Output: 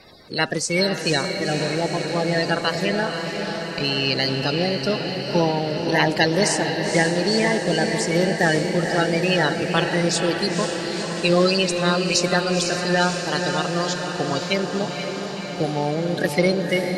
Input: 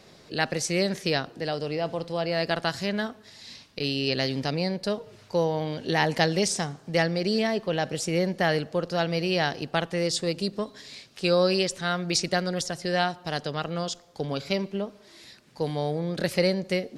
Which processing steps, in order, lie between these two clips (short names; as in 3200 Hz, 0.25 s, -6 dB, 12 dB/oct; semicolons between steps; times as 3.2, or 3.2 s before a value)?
bin magnitudes rounded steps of 30 dB; diffused feedback echo 0.497 s, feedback 72%, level -6 dB; gain +5 dB